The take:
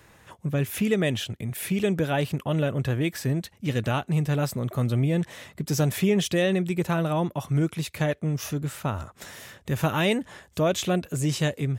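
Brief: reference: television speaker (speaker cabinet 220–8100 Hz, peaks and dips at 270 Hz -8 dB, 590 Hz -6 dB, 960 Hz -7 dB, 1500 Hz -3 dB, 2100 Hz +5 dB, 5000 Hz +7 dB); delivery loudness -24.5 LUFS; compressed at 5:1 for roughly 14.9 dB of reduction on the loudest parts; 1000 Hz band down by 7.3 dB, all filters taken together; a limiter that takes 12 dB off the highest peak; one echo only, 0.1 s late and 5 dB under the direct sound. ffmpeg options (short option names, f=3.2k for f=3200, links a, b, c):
-af "equalizer=f=1k:t=o:g=-5.5,acompressor=threshold=-37dB:ratio=5,alimiter=level_in=7.5dB:limit=-24dB:level=0:latency=1,volume=-7.5dB,highpass=f=220:w=0.5412,highpass=f=220:w=1.3066,equalizer=f=270:t=q:w=4:g=-8,equalizer=f=590:t=q:w=4:g=-6,equalizer=f=960:t=q:w=4:g=-7,equalizer=f=1.5k:t=q:w=4:g=-3,equalizer=f=2.1k:t=q:w=4:g=5,equalizer=f=5k:t=q:w=4:g=7,lowpass=f=8.1k:w=0.5412,lowpass=f=8.1k:w=1.3066,aecho=1:1:100:0.562,volume=19dB"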